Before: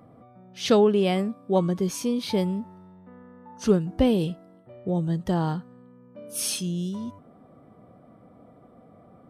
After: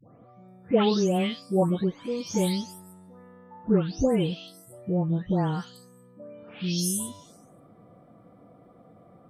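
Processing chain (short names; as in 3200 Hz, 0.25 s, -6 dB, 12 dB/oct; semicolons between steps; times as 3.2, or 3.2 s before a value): spectral delay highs late, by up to 0.486 s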